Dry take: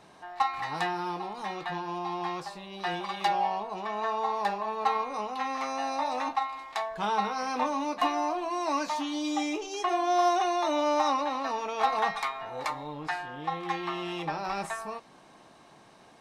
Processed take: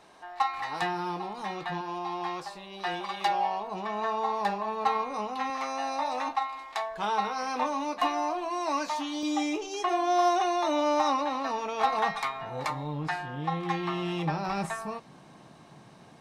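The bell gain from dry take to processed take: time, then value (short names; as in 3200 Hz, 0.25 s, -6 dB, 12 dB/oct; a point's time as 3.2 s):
bell 140 Hz 1.5 oct
-8 dB
from 0.82 s +3.5 dB
from 1.81 s -4.5 dB
from 3.67 s +6.5 dB
from 5.5 s -5 dB
from 9.23 s +5.5 dB
from 12.24 s +11.5 dB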